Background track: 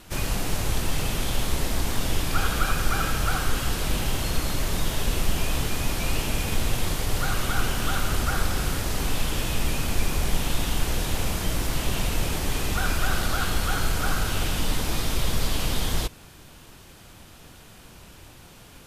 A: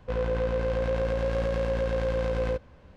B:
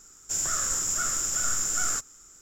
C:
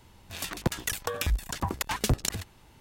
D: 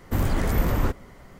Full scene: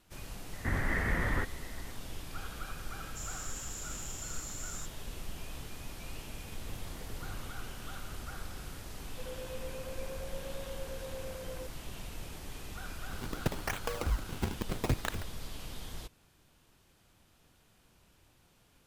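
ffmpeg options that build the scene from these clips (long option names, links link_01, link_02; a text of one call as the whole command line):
ffmpeg -i bed.wav -i cue0.wav -i cue1.wav -i cue2.wav -i cue3.wav -filter_complex "[4:a]asplit=2[link_01][link_02];[0:a]volume=-18dB[link_03];[link_01]lowpass=frequency=1900:width_type=q:width=7.5[link_04];[link_02]acompressor=threshold=-29dB:ratio=6:attack=3.2:release=140:knee=1:detection=peak[link_05];[1:a]highpass=270[link_06];[3:a]acrusher=samples=41:mix=1:aa=0.000001:lfo=1:lforange=65.6:lforate=0.76[link_07];[link_04]atrim=end=1.39,asetpts=PTS-STARTPTS,volume=-10dB,afade=type=in:duration=0.004:curve=hsin,afade=type=out:start_time=1.386:duration=0.004:curve=hsin,adelay=530[link_08];[2:a]atrim=end=2.41,asetpts=PTS-STARTPTS,volume=-16.5dB,afade=type=in:duration=0.004:curve=hsin,afade=type=out:start_time=2.406:duration=0.004:curve=hsin,adelay=2860[link_09];[link_05]atrim=end=1.39,asetpts=PTS-STARTPTS,volume=-15dB,afade=type=in:duration=0.004:curve=hsin,afade=type=out:start_time=1.386:duration=0.004:curve=hsin,adelay=6570[link_10];[link_06]atrim=end=2.96,asetpts=PTS-STARTPTS,volume=-15.5dB,afade=type=in:duration=0.004:curve=hsin,afade=type=out:start_time=2.956:duration=0.004:curve=hsin,adelay=9100[link_11];[link_07]atrim=end=2.8,asetpts=PTS-STARTPTS,volume=-5dB,afade=type=in:duration=0.004:curve=hsin,afade=type=out:start_time=2.796:duration=0.004:curve=hsin,adelay=12800[link_12];[link_03][link_08][link_09][link_10][link_11][link_12]amix=inputs=6:normalize=0" out.wav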